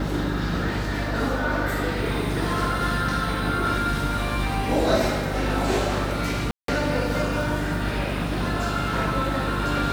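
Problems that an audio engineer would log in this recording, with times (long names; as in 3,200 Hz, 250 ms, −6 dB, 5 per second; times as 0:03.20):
mains hum 50 Hz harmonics 6 −29 dBFS
0:06.51–0:06.68: drop-out 173 ms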